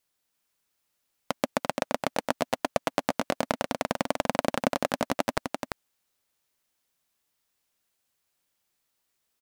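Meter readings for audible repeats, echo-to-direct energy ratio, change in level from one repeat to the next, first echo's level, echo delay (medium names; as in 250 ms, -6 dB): 1, -5.0 dB, no regular repeats, -5.0 dB, 342 ms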